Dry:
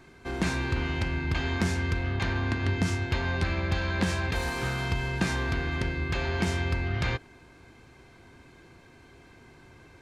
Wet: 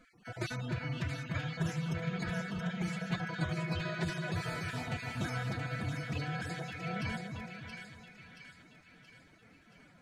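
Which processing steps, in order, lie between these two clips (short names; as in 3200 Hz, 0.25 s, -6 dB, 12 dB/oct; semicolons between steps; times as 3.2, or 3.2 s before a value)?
random spectral dropouts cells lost 23%; formant-preserving pitch shift +11 st; split-band echo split 1400 Hz, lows 0.293 s, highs 0.676 s, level -5 dB; gain -8 dB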